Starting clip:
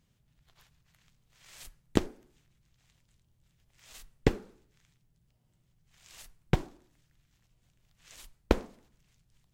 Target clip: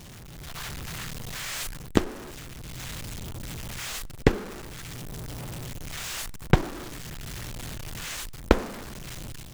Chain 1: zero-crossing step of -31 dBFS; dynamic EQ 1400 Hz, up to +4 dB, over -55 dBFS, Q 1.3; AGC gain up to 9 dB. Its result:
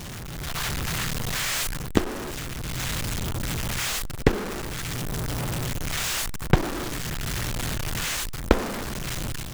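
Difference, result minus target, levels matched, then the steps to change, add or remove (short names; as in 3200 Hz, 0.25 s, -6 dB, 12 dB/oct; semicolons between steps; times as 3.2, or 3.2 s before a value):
zero-crossing step: distortion +8 dB
change: zero-crossing step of -39.5 dBFS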